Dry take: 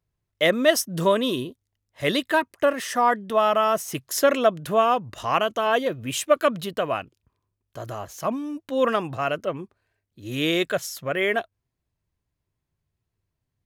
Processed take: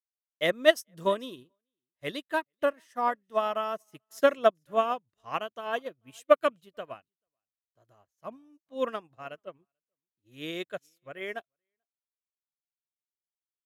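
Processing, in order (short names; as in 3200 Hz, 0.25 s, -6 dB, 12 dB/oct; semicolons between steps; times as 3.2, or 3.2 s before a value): echo 0.438 s -22 dB; upward expander 2.5:1, over -42 dBFS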